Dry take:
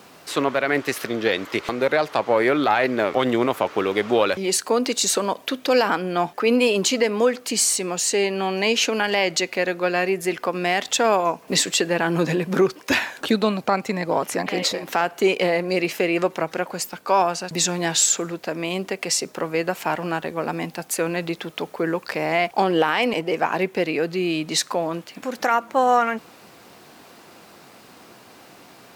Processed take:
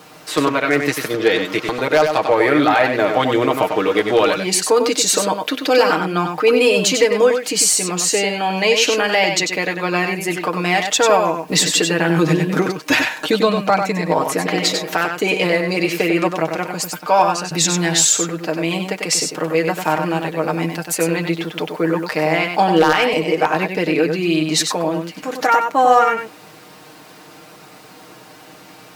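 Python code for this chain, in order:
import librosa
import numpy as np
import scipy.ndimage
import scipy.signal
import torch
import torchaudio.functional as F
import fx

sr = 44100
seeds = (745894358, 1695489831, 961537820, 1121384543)

p1 = x + 0.72 * np.pad(x, (int(6.5 * sr / 1000.0), 0))[:len(x)]
p2 = 10.0 ** (-7.0 / 20.0) * (np.abs((p1 / 10.0 ** (-7.0 / 20.0) + 3.0) % 4.0 - 2.0) - 1.0)
p3 = p2 + fx.echo_single(p2, sr, ms=96, db=-6.0, dry=0)
y = F.gain(torch.from_numpy(p3), 2.5).numpy()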